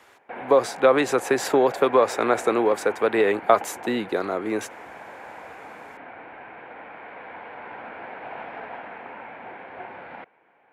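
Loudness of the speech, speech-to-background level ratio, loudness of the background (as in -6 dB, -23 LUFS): -22.0 LUFS, 16.0 dB, -38.0 LUFS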